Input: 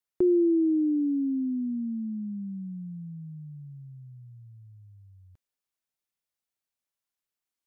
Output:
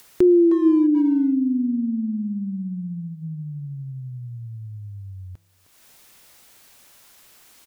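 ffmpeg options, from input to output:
-filter_complex "[0:a]bandreject=f=164.3:t=h:w=4,bandreject=f=328.6:t=h:w=4,bandreject=f=492.9:t=h:w=4,bandreject=f=657.2:t=h:w=4,bandreject=f=821.5:t=h:w=4,bandreject=f=985.8:t=h:w=4,bandreject=f=1150.1:t=h:w=4,bandreject=f=1314.4:t=h:w=4,bandreject=f=1478.7:t=h:w=4,acompressor=mode=upward:threshold=0.0178:ratio=2.5,asplit=2[s0][s1];[s1]adelay=310,highpass=300,lowpass=3400,asoftclip=type=hard:threshold=0.0501,volume=0.398[s2];[s0][s2]amix=inputs=2:normalize=0,volume=2.37"

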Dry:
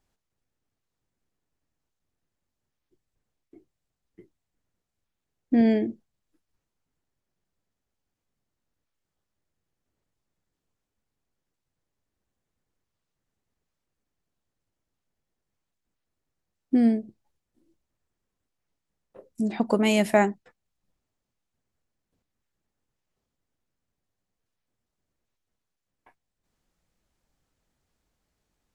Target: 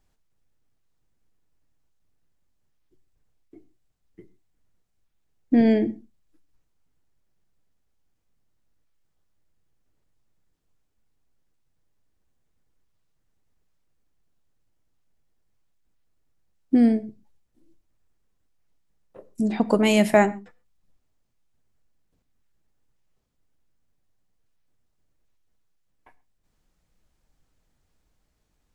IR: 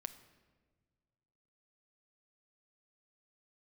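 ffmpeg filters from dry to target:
-filter_complex "[0:a]asplit=2[s0][s1];[1:a]atrim=start_sample=2205,afade=t=out:st=0.19:d=0.01,atrim=end_sample=8820,lowshelf=f=100:g=11[s2];[s1][s2]afir=irnorm=-1:irlink=0,volume=1.88[s3];[s0][s3]amix=inputs=2:normalize=0,volume=0.596"

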